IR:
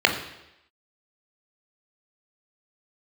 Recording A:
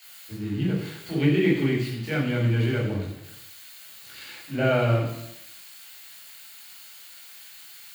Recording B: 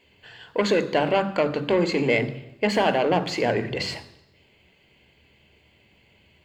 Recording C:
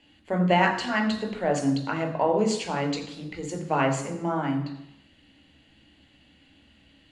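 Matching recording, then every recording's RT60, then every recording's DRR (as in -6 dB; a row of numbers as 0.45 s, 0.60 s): C; 0.85 s, 0.85 s, 0.85 s; -7.0 dB, 9.5 dB, 3.0 dB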